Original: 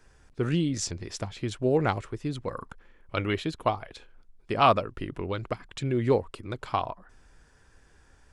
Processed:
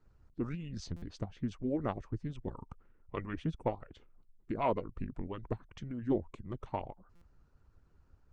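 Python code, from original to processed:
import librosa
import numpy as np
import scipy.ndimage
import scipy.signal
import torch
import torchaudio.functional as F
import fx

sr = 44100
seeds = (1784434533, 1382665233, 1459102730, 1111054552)

y = fx.tilt_eq(x, sr, slope=-3.0)
y = fx.hpss(y, sr, part='harmonic', gain_db=-16)
y = fx.formant_shift(y, sr, semitones=-3)
y = fx.buffer_glitch(y, sr, at_s=(0.96, 7.15), block=256, repeats=10)
y = F.gain(torch.from_numpy(y), -8.5).numpy()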